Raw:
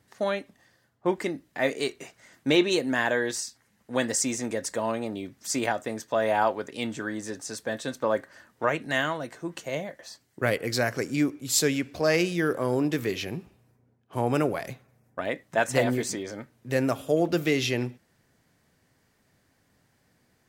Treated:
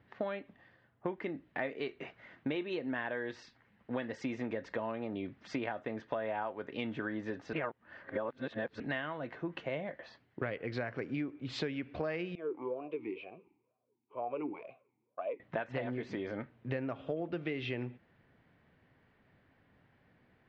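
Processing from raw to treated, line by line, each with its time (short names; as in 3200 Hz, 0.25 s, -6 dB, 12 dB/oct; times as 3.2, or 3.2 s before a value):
7.53–8.8 reverse
12.35–15.4 vowel sweep a-u 2.1 Hz
whole clip: inverse Chebyshev low-pass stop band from 11000 Hz, stop band 70 dB; compressor 10:1, threshold -33 dBFS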